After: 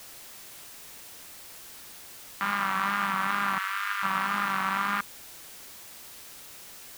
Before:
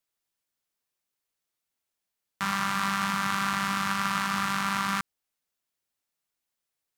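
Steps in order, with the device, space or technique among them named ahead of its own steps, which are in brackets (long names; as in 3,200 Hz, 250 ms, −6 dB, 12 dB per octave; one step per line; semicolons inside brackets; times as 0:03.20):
wax cylinder (band-pass filter 260–2,600 Hz; tape wow and flutter; white noise bed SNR 14 dB)
0:03.58–0:04.03: inverse Chebyshev high-pass filter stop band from 210 Hz, stop band 80 dB
level +1.5 dB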